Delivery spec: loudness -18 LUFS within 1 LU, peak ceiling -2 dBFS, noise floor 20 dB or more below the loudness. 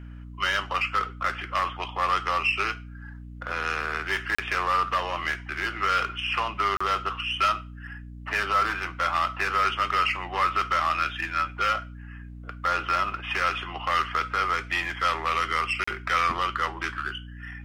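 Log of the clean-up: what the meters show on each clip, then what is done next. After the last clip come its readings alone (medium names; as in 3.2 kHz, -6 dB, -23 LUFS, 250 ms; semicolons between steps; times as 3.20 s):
dropouts 3; longest dropout 35 ms; hum 60 Hz; highest harmonic 300 Hz; hum level -38 dBFS; loudness -26.0 LUFS; peak level -11.0 dBFS; loudness target -18.0 LUFS
-> interpolate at 4.35/6.77/15.84 s, 35 ms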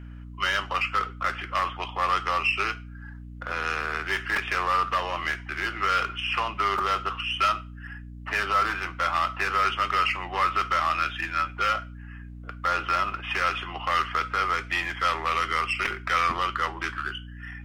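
dropouts 0; hum 60 Hz; highest harmonic 300 Hz; hum level -38 dBFS
-> hum notches 60/120/180/240/300 Hz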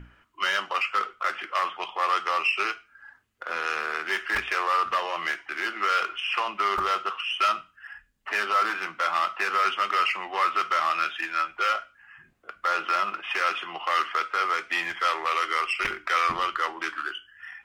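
hum not found; loudness -26.0 LUFS; peak level -11.0 dBFS; loudness target -18.0 LUFS
-> trim +8 dB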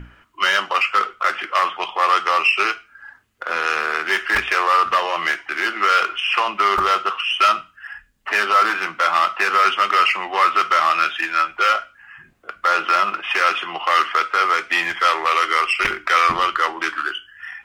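loudness -18.0 LUFS; peak level -3.0 dBFS; noise floor -53 dBFS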